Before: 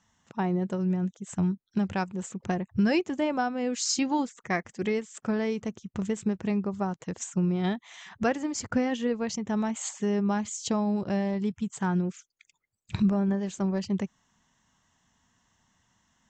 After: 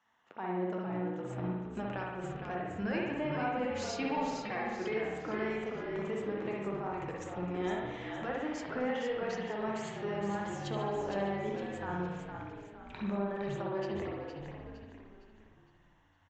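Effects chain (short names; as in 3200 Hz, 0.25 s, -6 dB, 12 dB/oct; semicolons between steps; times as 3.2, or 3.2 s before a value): three-band isolator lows -19 dB, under 330 Hz, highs -19 dB, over 3400 Hz; limiter -26.5 dBFS, peak gain reduction 10.5 dB; flange 0.57 Hz, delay 7.8 ms, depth 7.6 ms, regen -62%; frequency-shifting echo 0.461 s, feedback 42%, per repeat -58 Hz, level -6 dB; spring tank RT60 1.1 s, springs 55 ms, chirp 20 ms, DRR -1.5 dB; gain +1.5 dB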